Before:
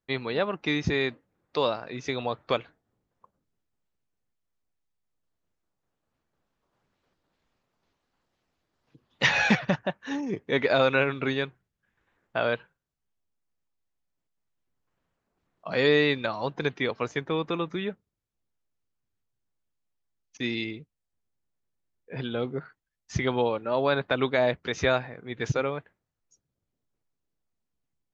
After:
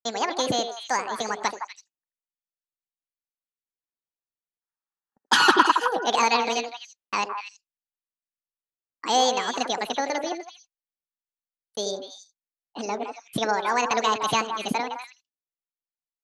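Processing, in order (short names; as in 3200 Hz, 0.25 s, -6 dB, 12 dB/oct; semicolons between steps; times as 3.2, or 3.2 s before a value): spectral gain 8.01–10.37, 450–1100 Hz +12 dB; gate -49 dBFS, range -33 dB; delay with a stepping band-pass 0.142 s, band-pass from 250 Hz, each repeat 1.4 oct, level -2 dB; speed mistake 45 rpm record played at 78 rpm; gain +1 dB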